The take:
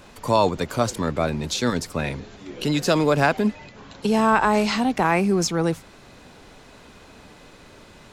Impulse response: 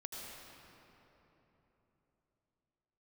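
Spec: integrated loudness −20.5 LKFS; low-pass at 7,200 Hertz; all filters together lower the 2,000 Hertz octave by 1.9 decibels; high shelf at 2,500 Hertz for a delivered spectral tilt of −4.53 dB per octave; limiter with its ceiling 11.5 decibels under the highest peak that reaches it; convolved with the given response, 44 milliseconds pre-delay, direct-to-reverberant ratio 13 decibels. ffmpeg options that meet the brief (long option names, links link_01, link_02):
-filter_complex "[0:a]lowpass=7200,equalizer=frequency=2000:width_type=o:gain=-6.5,highshelf=frequency=2500:gain=8,alimiter=limit=-15.5dB:level=0:latency=1,asplit=2[link_01][link_02];[1:a]atrim=start_sample=2205,adelay=44[link_03];[link_02][link_03]afir=irnorm=-1:irlink=0,volume=-11.5dB[link_04];[link_01][link_04]amix=inputs=2:normalize=0,volume=5dB"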